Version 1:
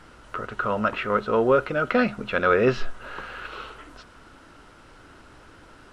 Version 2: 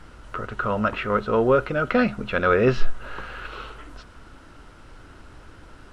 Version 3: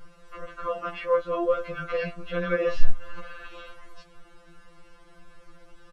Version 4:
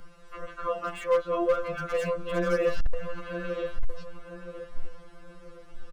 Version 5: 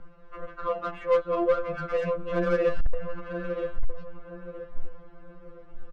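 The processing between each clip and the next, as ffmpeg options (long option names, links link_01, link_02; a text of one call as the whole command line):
ffmpeg -i in.wav -af "lowshelf=frequency=120:gain=10" out.wav
ffmpeg -i in.wav -af "aecho=1:1:4:0.45,flanger=delay=6.4:depth=2.1:regen=-68:speed=1.3:shape=sinusoidal,afftfilt=real='re*2.83*eq(mod(b,8),0)':imag='im*2.83*eq(mod(b,8),0)':win_size=2048:overlap=0.75" out.wav
ffmpeg -i in.wav -filter_complex "[0:a]acrossover=split=200|1600[link_01][link_02][link_03];[link_03]aeval=exprs='0.0133*(abs(mod(val(0)/0.0133+3,4)-2)-1)':channel_layout=same[link_04];[link_01][link_02][link_04]amix=inputs=3:normalize=0,asplit=2[link_05][link_06];[link_06]adelay=975,lowpass=frequency=1200:poles=1,volume=-6.5dB,asplit=2[link_07][link_08];[link_08]adelay=975,lowpass=frequency=1200:poles=1,volume=0.38,asplit=2[link_09][link_10];[link_10]adelay=975,lowpass=frequency=1200:poles=1,volume=0.38,asplit=2[link_11][link_12];[link_12]adelay=975,lowpass=frequency=1200:poles=1,volume=0.38[link_13];[link_05][link_07][link_09][link_11][link_13]amix=inputs=5:normalize=0,asoftclip=type=hard:threshold=-17dB" out.wav
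ffmpeg -i in.wav -af "adynamicsmooth=sensitivity=2:basefreq=1800,volume=1.5dB" out.wav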